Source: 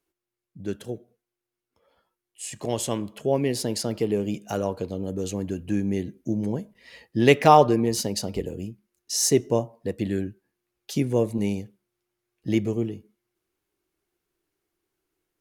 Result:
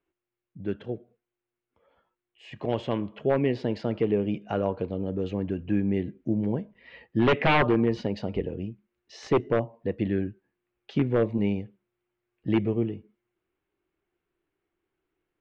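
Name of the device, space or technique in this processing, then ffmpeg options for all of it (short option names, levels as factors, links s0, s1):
synthesiser wavefolder: -af "aeval=exprs='0.2*(abs(mod(val(0)/0.2+3,4)-2)-1)':c=same,lowpass=f=3000:w=0.5412,lowpass=f=3000:w=1.3066"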